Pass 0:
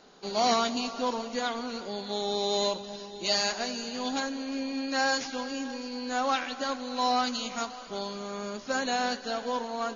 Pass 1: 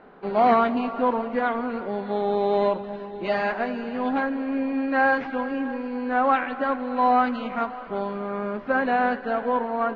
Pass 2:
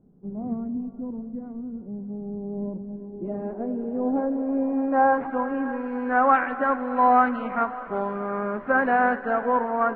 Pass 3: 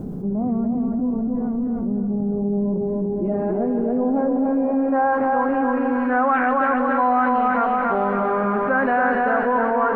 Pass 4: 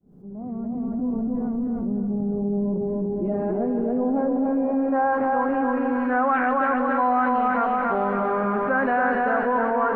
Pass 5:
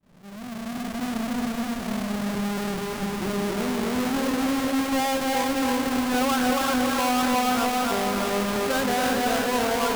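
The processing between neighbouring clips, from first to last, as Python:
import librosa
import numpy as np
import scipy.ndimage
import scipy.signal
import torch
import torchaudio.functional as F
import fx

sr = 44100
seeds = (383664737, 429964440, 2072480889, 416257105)

y1 = scipy.signal.sosfilt(scipy.signal.butter(4, 2100.0, 'lowpass', fs=sr, output='sos'), x)
y1 = y1 * librosa.db_to_amplitude(7.5)
y2 = fx.quant_dither(y1, sr, seeds[0], bits=10, dither='none')
y2 = fx.filter_sweep_lowpass(y2, sr, from_hz=170.0, to_hz=1600.0, start_s=2.41, end_s=5.92, q=1.4)
y3 = fx.echo_feedback(y2, sr, ms=281, feedback_pct=45, wet_db=-4.0)
y3 = fx.env_flatten(y3, sr, amount_pct=70)
y3 = y3 * librosa.db_to_amplitude(-2.0)
y4 = fx.fade_in_head(y3, sr, length_s=1.16)
y4 = y4 * librosa.db_to_amplitude(-2.5)
y5 = fx.halfwave_hold(y4, sr)
y5 = y5 + 10.0 ** (-5.5 / 20.0) * np.pad(y5, (int(353 * sr / 1000.0), 0))[:len(y5)]
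y5 = y5 * librosa.db_to_amplitude(-7.0)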